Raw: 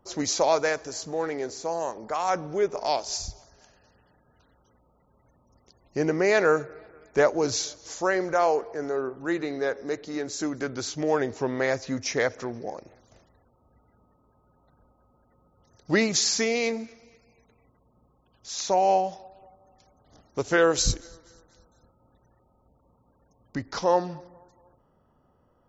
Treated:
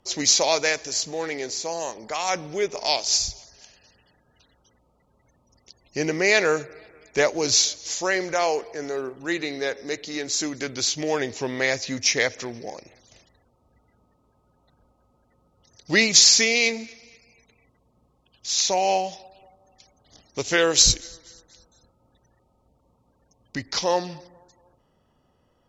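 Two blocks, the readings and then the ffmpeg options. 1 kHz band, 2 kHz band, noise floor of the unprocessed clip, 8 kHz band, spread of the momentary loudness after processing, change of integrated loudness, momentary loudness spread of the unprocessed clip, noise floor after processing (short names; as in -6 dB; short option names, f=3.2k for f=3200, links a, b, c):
-1.0 dB, +5.5 dB, -66 dBFS, n/a, 15 LU, +4.5 dB, 13 LU, -66 dBFS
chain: -af "aexciter=amount=7:drive=2.4:freq=2k,acrusher=bits=7:mode=log:mix=0:aa=0.000001,aemphasis=mode=reproduction:type=50fm,volume=-1dB"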